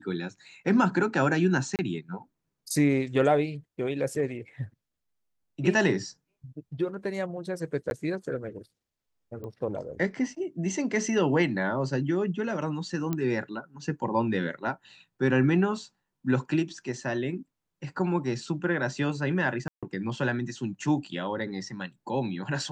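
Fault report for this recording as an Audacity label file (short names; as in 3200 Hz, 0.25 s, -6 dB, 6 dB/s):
1.760000	1.790000	gap 28 ms
7.900000	7.910000	gap 11 ms
9.440000	9.440000	pop -29 dBFS
13.130000	13.130000	pop -16 dBFS
19.680000	19.830000	gap 0.146 s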